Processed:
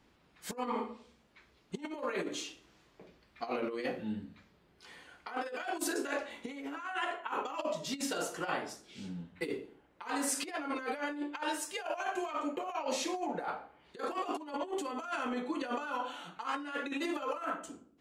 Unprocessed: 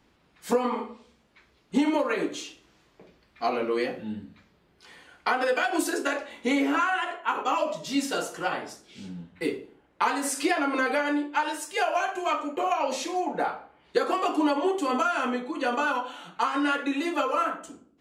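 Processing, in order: negative-ratio compressor -29 dBFS, ratio -0.5; gain -6.5 dB

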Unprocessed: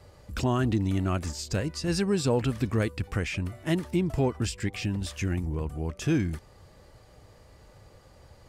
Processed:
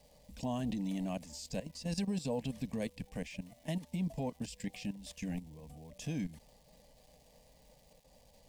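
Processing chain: level quantiser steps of 14 dB; crackle 580/s -51 dBFS; fixed phaser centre 360 Hz, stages 6; gain -3 dB

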